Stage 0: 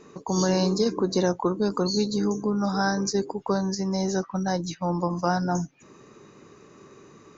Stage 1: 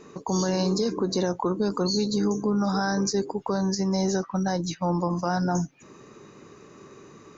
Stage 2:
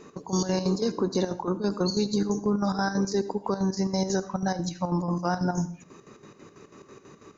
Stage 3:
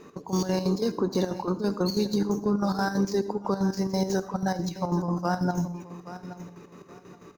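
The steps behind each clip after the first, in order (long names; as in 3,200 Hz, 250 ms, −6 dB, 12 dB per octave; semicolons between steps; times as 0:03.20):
brickwall limiter −18 dBFS, peak gain reduction 6 dB; level +2 dB
square-wave tremolo 6.1 Hz, depth 65%, duty 60%; convolution reverb RT60 0.50 s, pre-delay 64 ms, DRR 15.5 dB
running median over 5 samples; repeating echo 824 ms, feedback 24%, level −14 dB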